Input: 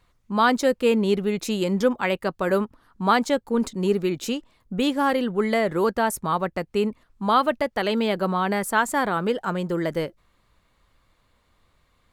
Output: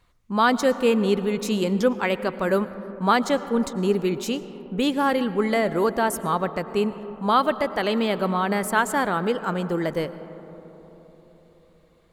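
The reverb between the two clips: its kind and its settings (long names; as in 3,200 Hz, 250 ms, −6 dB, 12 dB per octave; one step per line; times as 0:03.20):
comb and all-pass reverb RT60 4.3 s, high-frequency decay 0.25×, pre-delay 70 ms, DRR 13.5 dB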